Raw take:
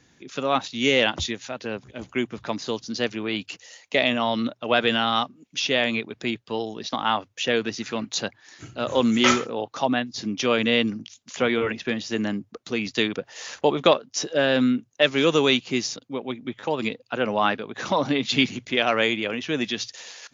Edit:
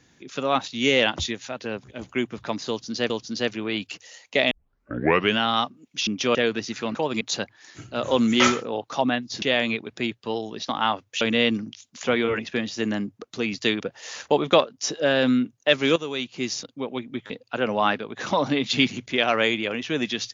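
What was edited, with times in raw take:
2.69–3.10 s: loop, 2 plays
4.10 s: tape start 0.87 s
5.66–7.45 s: swap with 10.26–10.54 s
15.29–15.91 s: fade in quadratic, from -12.5 dB
16.63–16.89 s: move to 8.05 s

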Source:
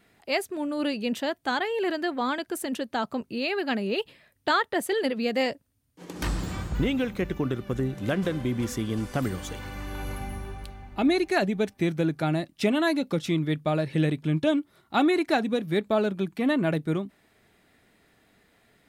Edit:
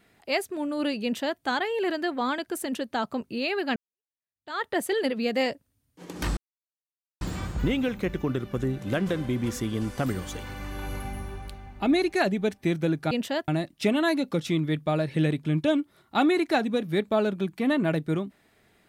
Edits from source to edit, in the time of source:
1.03–1.40 s: copy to 12.27 s
3.76–4.64 s: fade in exponential
6.37 s: insert silence 0.84 s

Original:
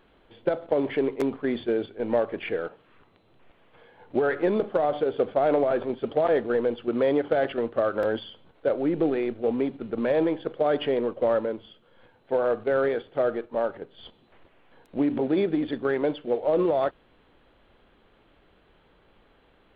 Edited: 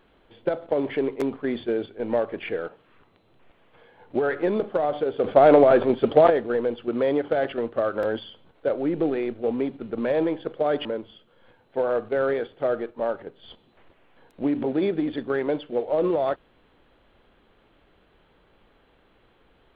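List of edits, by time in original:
5.24–6.30 s: gain +8 dB
10.85–11.40 s: delete

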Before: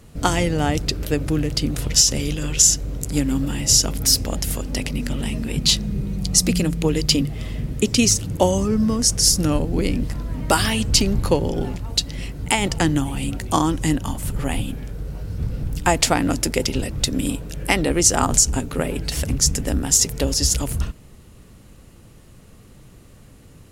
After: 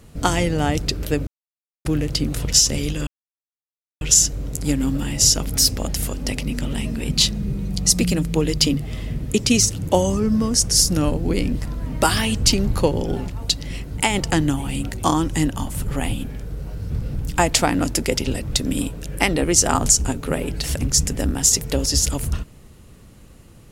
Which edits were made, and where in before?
1.27 s: insert silence 0.58 s
2.49 s: insert silence 0.94 s

